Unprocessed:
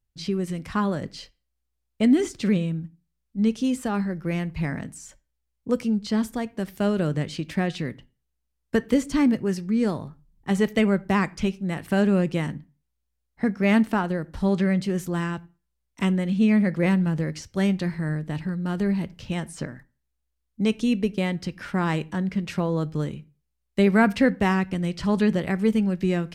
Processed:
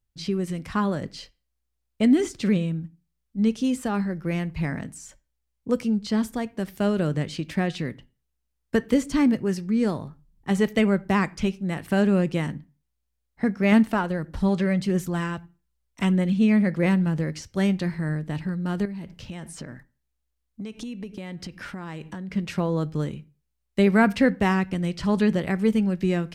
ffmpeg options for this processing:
ffmpeg -i in.wav -filter_complex "[0:a]asettb=1/sr,asplit=3[link_01][link_02][link_03];[link_01]atrim=end=13.724[link_04];[link_02]atrim=start=13.72:end=16.36,asetpts=PTS-STARTPTS,afade=type=in:duration=0.004:curve=qsin,afade=type=out:start_time=2.636:duration=0.004:curve=qsin,aphaser=in_gain=1:out_gain=1:delay=2.2:decay=0.3:speed=1.6:type=triangular[link_05];[link_03]atrim=start=16.356[link_06];[link_04][link_05]acrossfade=duration=0.004:curve1=hsin:curve2=qsin[link_07];[link_07][link_06]acrossfade=duration=0.004:curve1=qsin:curve2=hsin,asettb=1/sr,asplit=3[link_08][link_09][link_10];[link_08]atrim=end=18.854[link_11];[link_09]atrim=start=18.85:end=22.31,asetpts=PTS-STARTPTS,afade=type=in:duration=0.004:curve=qsin,afade=type=out:start_time=3.456:duration=0.004:curve=qsin,acompressor=threshold=-31dB:ratio=12:attack=3.2:release=140:knee=1:detection=peak[link_12];[link_10]atrim=start=22.306[link_13];[link_11][link_12]acrossfade=duration=0.004:curve1=hsin:curve2=qsin[link_14];[link_14][link_13]acrossfade=duration=0.004:curve1=qsin:curve2=hsin" out.wav

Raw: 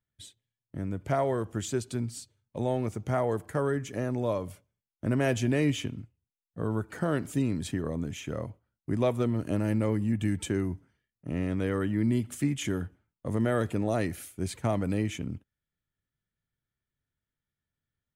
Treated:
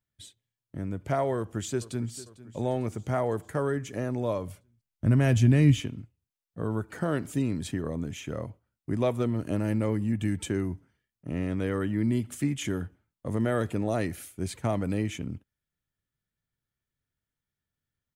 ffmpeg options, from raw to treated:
ffmpeg -i in.wav -filter_complex "[0:a]asplit=2[link_01][link_02];[link_02]afade=type=in:start_time=1.36:duration=0.01,afade=type=out:start_time=2.11:duration=0.01,aecho=0:1:450|900|1350|1800|2250|2700:0.133352|0.0800113|0.0480068|0.0288041|0.0172824|0.0103695[link_03];[link_01][link_03]amix=inputs=2:normalize=0,asettb=1/sr,asplit=3[link_04][link_05][link_06];[link_04]atrim=end=4.364[link_07];[link_05]atrim=start=4.36:end=5.8,asetpts=PTS-STARTPTS,afade=type=in:duration=0.004:curve=qsin,afade=type=out:start_time=1.436:duration=0.004:curve=qsin,asubboost=boost=11:cutoff=200[link_08];[link_06]atrim=start=5.796[link_09];[link_07][link_08]acrossfade=duration=0.004:curve1=hsin:curve2=qsin[link_10];[link_10][link_09]acrossfade=duration=0.004:curve1=qsin:curve2=hsin" out.wav

